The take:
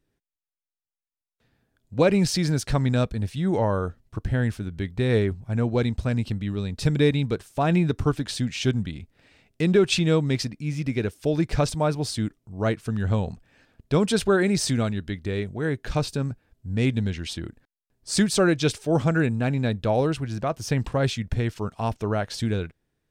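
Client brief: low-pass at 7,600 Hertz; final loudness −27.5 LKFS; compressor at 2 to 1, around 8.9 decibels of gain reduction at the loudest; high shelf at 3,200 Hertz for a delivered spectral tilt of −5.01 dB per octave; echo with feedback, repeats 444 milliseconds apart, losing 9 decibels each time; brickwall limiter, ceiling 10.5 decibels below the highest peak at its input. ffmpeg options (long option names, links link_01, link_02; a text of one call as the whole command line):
ffmpeg -i in.wav -af "lowpass=7600,highshelf=frequency=3200:gain=8,acompressor=threshold=-31dB:ratio=2,alimiter=level_in=0.5dB:limit=-24dB:level=0:latency=1,volume=-0.5dB,aecho=1:1:444|888|1332|1776:0.355|0.124|0.0435|0.0152,volume=6.5dB" out.wav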